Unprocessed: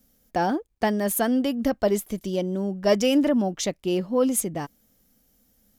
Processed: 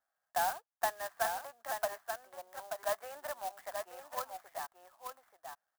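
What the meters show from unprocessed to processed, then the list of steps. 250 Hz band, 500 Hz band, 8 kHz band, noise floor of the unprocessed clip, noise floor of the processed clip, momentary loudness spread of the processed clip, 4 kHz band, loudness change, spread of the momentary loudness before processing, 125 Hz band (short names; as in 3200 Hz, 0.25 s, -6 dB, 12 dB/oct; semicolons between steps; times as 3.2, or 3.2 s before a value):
under -40 dB, -16.0 dB, -13.5 dB, -67 dBFS, under -85 dBFS, 14 LU, -14.0 dB, -15.0 dB, 8 LU, under -30 dB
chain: Chebyshev band-pass 680–1700 Hz, order 3; tilt +3 dB/oct; on a send: echo 0.882 s -6 dB; on the sum: clock jitter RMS 0.064 ms; gain -5 dB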